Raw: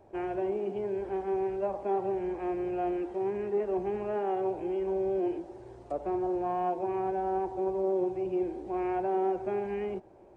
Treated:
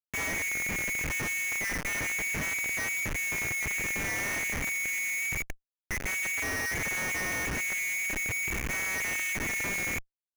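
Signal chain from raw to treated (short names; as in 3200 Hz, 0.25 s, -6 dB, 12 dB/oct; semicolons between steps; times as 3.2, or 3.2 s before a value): loudest bins only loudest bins 32; inverted band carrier 2600 Hz; Schmitt trigger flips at -36.5 dBFS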